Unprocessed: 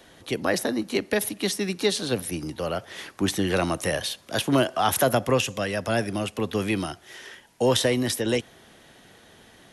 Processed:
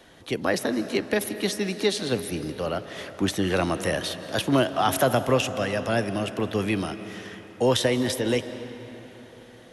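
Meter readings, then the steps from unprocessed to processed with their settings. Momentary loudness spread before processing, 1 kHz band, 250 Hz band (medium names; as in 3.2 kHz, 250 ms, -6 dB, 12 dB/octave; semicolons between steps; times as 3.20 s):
10 LU, +0.5 dB, +0.5 dB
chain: treble shelf 6.1 kHz -5 dB; algorithmic reverb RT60 4 s, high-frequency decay 0.6×, pre-delay 120 ms, DRR 11 dB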